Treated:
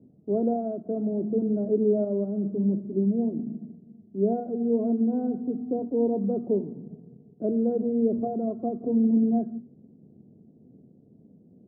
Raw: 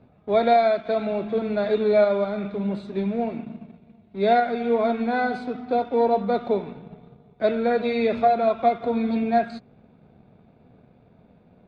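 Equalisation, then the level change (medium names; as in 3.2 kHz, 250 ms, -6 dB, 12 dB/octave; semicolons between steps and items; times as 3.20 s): high-pass 130 Hz 12 dB/octave; four-pole ladder low-pass 410 Hz, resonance 30%; hum notches 60/120/180/240 Hz; +8.0 dB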